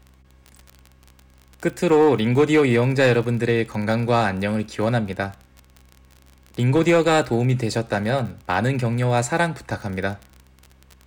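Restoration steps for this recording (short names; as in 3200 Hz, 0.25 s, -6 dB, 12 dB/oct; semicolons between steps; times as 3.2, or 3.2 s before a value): clip repair -10 dBFS; de-click; de-hum 65 Hz, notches 6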